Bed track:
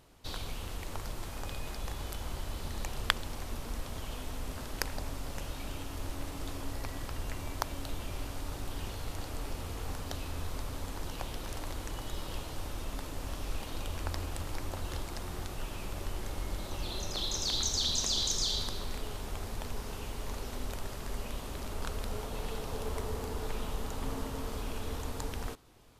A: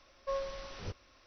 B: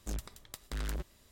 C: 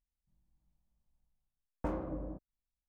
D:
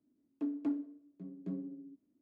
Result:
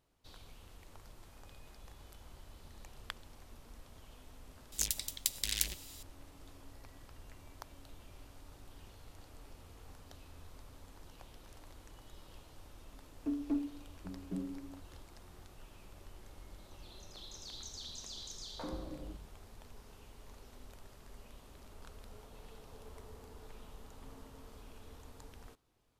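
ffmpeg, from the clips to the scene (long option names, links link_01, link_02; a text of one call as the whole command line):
ffmpeg -i bed.wav -i cue0.wav -i cue1.wav -i cue2.wav -i cue3.wav -filter_complex "[0:a]volume=-16dB[link_01];[2:a]aexciter=amount=13.3:drive=3.9:freq=2000[link_02];[3:a]acrossover=split=150|520[link_03][link_04][link_05];[link_04]adelay=40[link_06];[link_03]adelay=130[link_07];[link_07][link_06][link_05]amix=inputs=3:normalize=0[link_08];[link_02]atrim=end=1.31,asetpts=PTS-STARTPTS,volume=-10dB,afade=type=in:duration=0.004:curve=hsin,afade=type=out:start_time=1.306:duration=0.004:curve=hsin,adelay=4720[link_09];[4:a]atrim=end=2.21,asetpts=PTS-STARTPTS,afade=type=in:duration=0.004:curve=hsin,afade=type=out:start_time=2.206:duration=0.004:curve=hsin,adelay=12850[link_10];[link_08]atrim=end=2.88,asetpts=PTS-STARTPTS,volume=-4dB,afade=type=in:duration=0.004:curve=hsin,afade=type=out:start_time=2.876:duration=0.004:curve=hsin,adelay=16750[link_11];[link_01][link_09][link_10][link_11]amix=inputs=4:normalize=0" out.wav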